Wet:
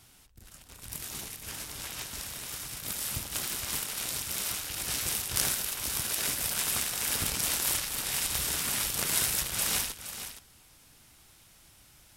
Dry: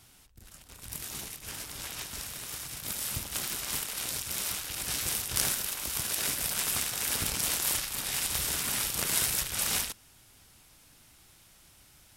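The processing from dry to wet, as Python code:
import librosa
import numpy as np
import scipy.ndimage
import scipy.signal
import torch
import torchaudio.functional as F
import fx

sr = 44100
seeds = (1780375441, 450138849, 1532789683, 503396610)

y = x + 10.0 ** (-10.5 / 20.0) * np.pad(x, (int(468 * sr / 1000.0), 0))[:len(x)]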